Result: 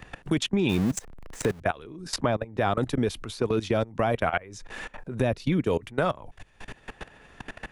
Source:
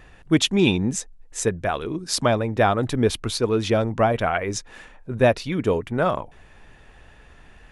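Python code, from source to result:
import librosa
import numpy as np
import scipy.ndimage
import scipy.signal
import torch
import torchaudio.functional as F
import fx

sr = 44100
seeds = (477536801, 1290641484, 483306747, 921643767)

y = fx.zero_step(x, sr, step_db=-25.0, at=(0.69, 1.6))
y = fx.low_shelf(y, sr, hz=370.0, db=9.5, at=(5.19, 5.59), fade=0.02)
y = fx.level_steps(y, sr, step_db=23)
y = fx.transient(y, sr, attack_db=-2, sustain_db=7, at=(2.57, 3.67), fade=0.02)
y = fx.band_squash(y, sr, depth_pct=70)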